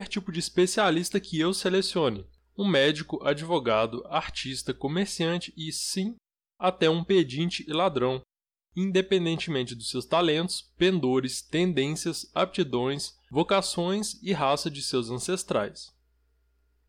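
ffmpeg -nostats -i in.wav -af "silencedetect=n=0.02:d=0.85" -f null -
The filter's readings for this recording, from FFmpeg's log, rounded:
silence_start: 15.82
silence_end: 16.89 | silence_duration: 1.06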